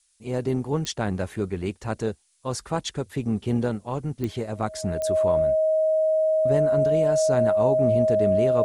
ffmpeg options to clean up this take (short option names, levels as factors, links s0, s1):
-af "adeclick=t=4,bandreject=f=630:w=30,agate=range=0.0891:threshold=0.00891"